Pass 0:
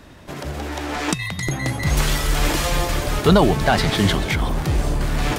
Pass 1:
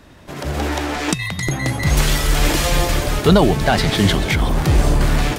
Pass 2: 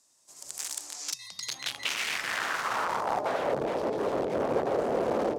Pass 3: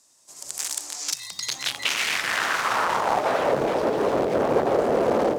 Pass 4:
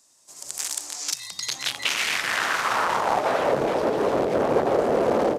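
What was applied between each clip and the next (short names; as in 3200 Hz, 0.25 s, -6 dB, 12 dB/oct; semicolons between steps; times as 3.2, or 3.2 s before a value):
dynamic EQ 1100 Hz, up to -3 dB, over -30 dBFS, Q 1.4; AGC gain up to 11.5 dB; gain -1.5 dB
band shelf 2300 Hz -10.5 dB; wrapped overs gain 14.5 dB; band-pass sweep 7600 Hz -> 500 Hz, 0.89–3.61
lo-fi delay 0.523 s, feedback 55%, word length 9-bit, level -12.5 dB; gain +6.5 dB
downsampling 32000 Hz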